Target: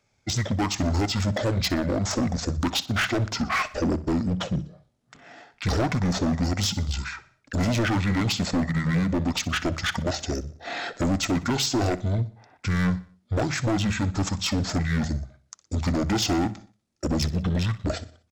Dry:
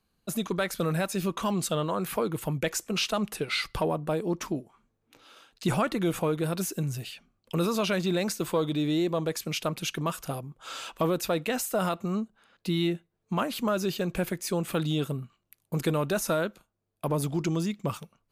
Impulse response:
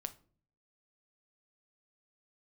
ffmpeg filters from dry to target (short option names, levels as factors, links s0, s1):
-af "highpass=f=110:p=1,equalizer=f=9500:t=o:w=0.98:g=3,bandreject=f=50:t=h:w=6,bandreject=f=100:t=h:w=6,bandreject=f=150:t=h:w=6,bandreject=f=200:t=h:w=6,bandreject=f=250:t=h:w=6,bandreject=f=300:t=h:w=6,bandreject=f=350:t=h:w=6,bandreject=f=400:t=h:w=6,asetrate=23361,aresample=44100,atempo=1.88775,asoftclip=type=hard:threshold=0.0422,aecho=1:1:61|122|183|244:0.126|0.0579|0.0266|0.0123,volume=2.37"